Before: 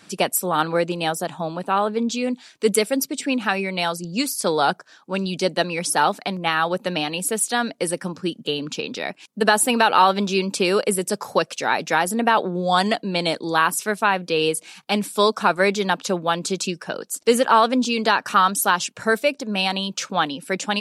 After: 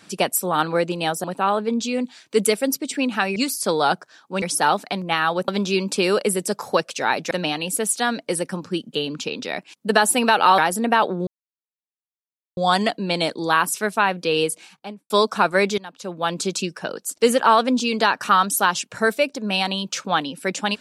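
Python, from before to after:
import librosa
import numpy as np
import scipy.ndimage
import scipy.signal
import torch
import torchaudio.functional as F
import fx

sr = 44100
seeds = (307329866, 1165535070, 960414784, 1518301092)

y = fx.studio_fade_out(x, sr, start_s=14.54, length_s=0.61)
y = fx.edit(y, sr, fx.cut(start_s=1.24, length_s=0.29),
    fx.cut(start_s=3.65, length_s=0.49),
    fx.cut(start_s=5.2, length_s=0.57),
    fx.move(start_s=10.1, length_s=1.83, to_s=6.83),
    fx.insert_silence(at_s=12.62, length_s=1.3),
    fx.fade_in_from(start_s=15.83, length_s=0.54, curve='qua', floor_db=-18.0), tone=tone)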